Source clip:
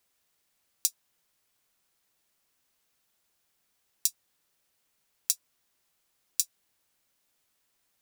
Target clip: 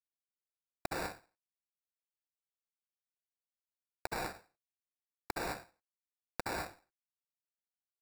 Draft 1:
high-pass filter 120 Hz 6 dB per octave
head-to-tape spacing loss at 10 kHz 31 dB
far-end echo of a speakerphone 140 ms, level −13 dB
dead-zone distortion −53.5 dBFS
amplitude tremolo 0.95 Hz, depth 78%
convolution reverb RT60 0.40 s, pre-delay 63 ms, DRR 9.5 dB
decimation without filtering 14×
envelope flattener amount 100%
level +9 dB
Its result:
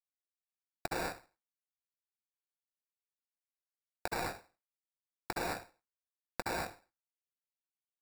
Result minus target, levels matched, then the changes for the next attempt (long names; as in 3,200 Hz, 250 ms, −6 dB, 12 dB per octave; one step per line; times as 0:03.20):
dead-zone distortion: distortion −6 dB
change: dead-zone distortion −45 dBFS